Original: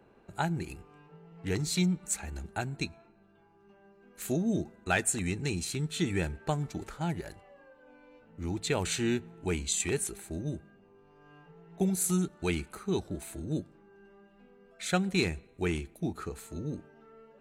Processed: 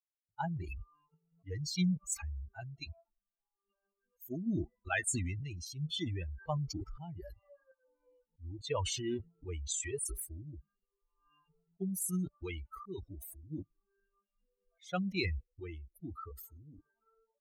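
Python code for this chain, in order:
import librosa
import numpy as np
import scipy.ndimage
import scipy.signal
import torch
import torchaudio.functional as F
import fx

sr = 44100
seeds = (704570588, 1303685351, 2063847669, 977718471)

y = fx.bin_expand(x, sr, power=3.0)
y = fx.tremolo_random(y, sr, seeds[0], hz=3.5, depth_pct=55)
y = fx.sustainer(y, sr, db_per_s=24.0)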